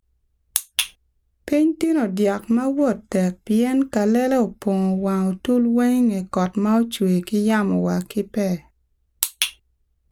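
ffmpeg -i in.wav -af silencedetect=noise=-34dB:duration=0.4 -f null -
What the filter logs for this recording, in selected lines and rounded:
silence_start: 0.00
silence_end: 0.56 | silence_duration: 0.56
silence_start: 0.88
silence_end: 1.48 | silence_duration: 0.60
silence_start: 8.59
silence_end: 9.23 | silence_duration: 0.63
silence_start: 9.50
silence_end: 10.11 | silence_duration: 0.61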